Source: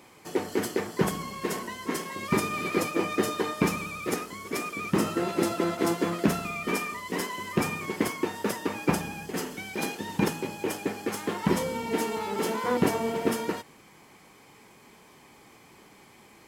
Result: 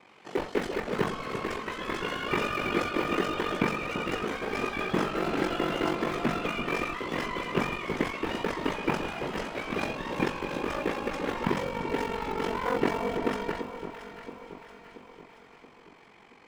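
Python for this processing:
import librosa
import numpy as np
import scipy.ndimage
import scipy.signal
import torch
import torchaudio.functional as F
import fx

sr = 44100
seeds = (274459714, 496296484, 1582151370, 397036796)

p1 = scipy.signal.sosfilt(scipy.signal.butter(2, 2700.0, 'lowpass', fs=sr, output='sos'), x)
p2 = fx.tilt_eq(p1, sr, slope=2.0)
p3 = fx.hum_notches(p2, sr, base_hz=50, count=2)
p4 = fx.schmitt(p3, sr, flips_db=-27.5)
p5 = p3 + F.gain(torch.from_numpy(p4), -9.0).numpy()
p6 = p5 * np.sin(2.0 * np.pi * 23.0 * np.arange(len(p5)) / sr)
p7 = fx.echo_pitch(p6, sr, ms=84, semitones=3, count=2, db_per_echo=-6.0)
p8 = p7 + fx.echo_alternate(p7, sr, ms=339, hz=1200.0, feedback_pct=70, wet_db=-8.0, dry=0)
y = F.gain(torch.from_numpy(p8), 1.5).numpy()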